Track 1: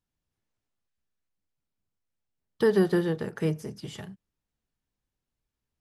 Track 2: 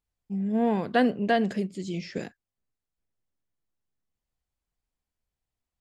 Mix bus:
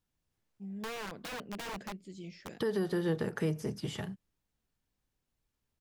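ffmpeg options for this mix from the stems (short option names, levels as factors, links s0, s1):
-filter_complex "[0:a]volume=1.26[s0];[1:a]aeval=exprs='(mod(11.9*val(0)+1,2)-1)/11.9':c=same,adelay=300,volume=0.224[s1];[s0][s1]amix=inputs=2:normalize=0,acrossover=split=3500|7100[s2][s3][s4];[s2]acompressor=threshold=0.0631:ratio=4[s5];[s3]acompressor=threshold=0.00282:ratio=4[s6];[s4]acompressor=threshold=0.002:ratio=4[s7];[s5][s6][s7]amix=inputs=3:normalize=0,alimiter=limit=0.0708:level=0:latency=1:release=167"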